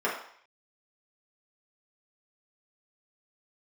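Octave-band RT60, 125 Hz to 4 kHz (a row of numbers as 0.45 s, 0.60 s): 0.30 s, 0.45 s, 0.55 s, 0.65 s, 0.60 s, 0.65 s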